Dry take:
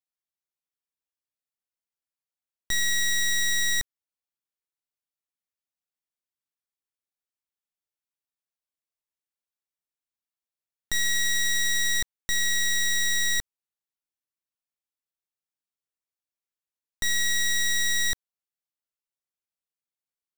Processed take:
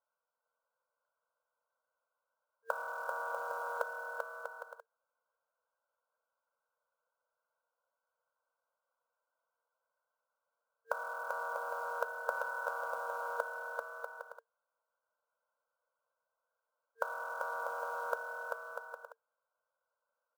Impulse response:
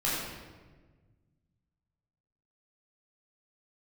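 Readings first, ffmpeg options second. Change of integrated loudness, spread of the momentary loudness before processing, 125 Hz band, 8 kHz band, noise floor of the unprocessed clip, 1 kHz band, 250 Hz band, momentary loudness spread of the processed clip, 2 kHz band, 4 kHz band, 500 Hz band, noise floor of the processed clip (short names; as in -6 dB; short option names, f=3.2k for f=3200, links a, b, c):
-15.5 dB, 6 LU, under -30 dB, -35.0 dB, under -85 dBFS, +17.0 dB, under -25 dB, 11 LU, -12.0 dB, -37.5 dB, n/a, under -85 dBFS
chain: -filter_complex "[0:a]afftfilt=real='re*between(b*sr/4096,360,1500)':imag='im*between(b*sr/4096,360,1500)':win_size=4096:overlap=0.75,aecho=1:1:2.2:0.48,afreqshift=94,acrusher=bits=5:mode=log:mix=0:aa=0.000001,asplit=2[a][b];[b]aecho=0:1:390|643.5|808.3|915.4|985:0.631|0.398|0.251|0.158|0.1[c];[a][c]amix=inputs=2:normalize=0,volume=14.5dB"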